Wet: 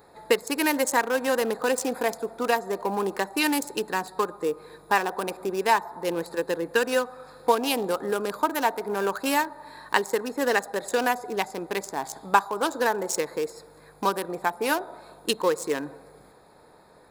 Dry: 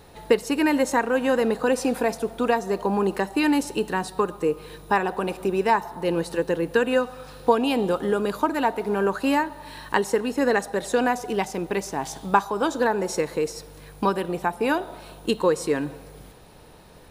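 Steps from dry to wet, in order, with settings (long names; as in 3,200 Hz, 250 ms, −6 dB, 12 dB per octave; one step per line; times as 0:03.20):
adaptive Wiener filter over 15 samples
RIAA equalisation recording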